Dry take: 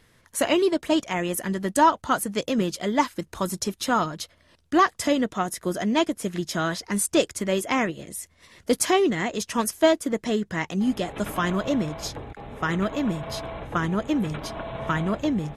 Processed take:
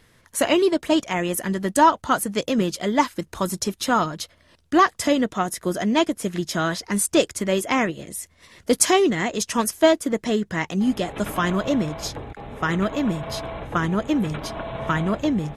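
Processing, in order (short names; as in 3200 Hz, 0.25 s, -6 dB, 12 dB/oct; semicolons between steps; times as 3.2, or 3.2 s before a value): 8.75–9.58 dynamic EQ 7300 Hz, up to +5 dB, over -37 dBFS, Q 0.76; gain +2.5 dB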